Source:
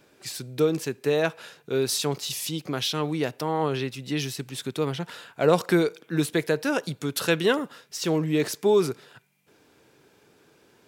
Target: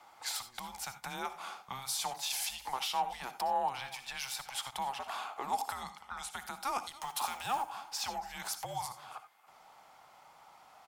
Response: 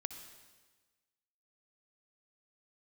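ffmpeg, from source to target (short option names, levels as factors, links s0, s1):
-filter_complex "[0:a]asettb=1/sr,asplit=3[s0][s1][s2];[s0]atrim=end=5.744[s3];[s1]atrim=start=5.74:end=6.31,asetpts=PTS-STARTPTS,afade=t=in:d=0.004:c=qsin,afade=t=out:st=0.566:d=0.004:c=qsin,lowpass=8400[s4];[s2]atrim=start=6.306[s5];[s3][s4]acrossfade=d=0.004:c1=hsin:c2=qsin[s6];[s6][s5]acrossfade=d=0.004:c1=qsin:c2=hsin,acrossover=split=6100[s7][s8];[s7]acompressor=threshold=0.0251:ratio=5[s9];[s9][s8]amix=inputs=2:normalize=0,alimiter=limit=0.0708:level=0:latency=1:release=157,asettb=1/sr,asplit=3[s10][s11][s12];[s10]atrim=end=7.004[s13];[s11]atrim=start=7:end=7.63,asetpts=PTS-STARTPTS,afade=t=in:d=0.004:c=qsin,afade=t=out:st=0.626:d=0.004:c=qsin,aeval=exprs='val(0)*gte(abs(val(0)),0.0075)':c=same[s14];[s12]atrim=start=7.626[s15];[s13][s14]acrossfade=d=0.004:c1=hsin:c2=qsin[s16];[s16][s15]acrossfade=d=0.004:c1=qsin:c2=hsin,highpass=f=1100:t=q:w=11,afreqshift=-270,aecho=1:1:283:0.1[s17];[1:a]atrim=start_sample=2205,atrim=end_sample=4410[s18];[s17][s18]afir=irnorm=-1:irlink=0"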